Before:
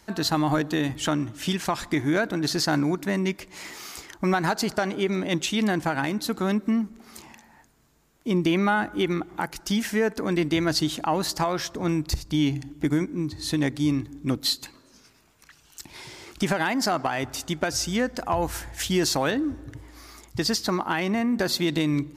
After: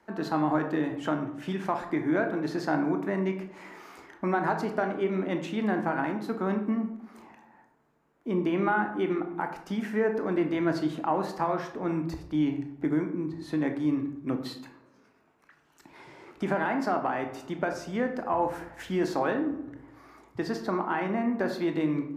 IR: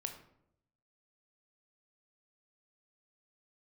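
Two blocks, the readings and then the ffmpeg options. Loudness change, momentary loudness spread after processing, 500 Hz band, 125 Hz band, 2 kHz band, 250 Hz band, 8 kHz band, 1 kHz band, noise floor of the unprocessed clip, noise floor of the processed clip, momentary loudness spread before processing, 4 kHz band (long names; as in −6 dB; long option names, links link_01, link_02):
−4.0 dB, 9 LU, −1.5 dB, −7.0 dB, −5.0 dB, −3.5 dB, below −20 dB, −1.5 dB, −58 dBFS, −64 dBFS, 13 LU, −17.0 dB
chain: -filter_complex "[0:a]acrossover=split=190 2000:gain=0.178 1 0.112[link_01][link_02][link_03];[link_01][link_02][link_03]amix=inputs=3:normalize=0[link_04];[1:a]atrim=start_sample=2205[link_05];[link_04][link_05]afir=irnorm=-1:irlink=0"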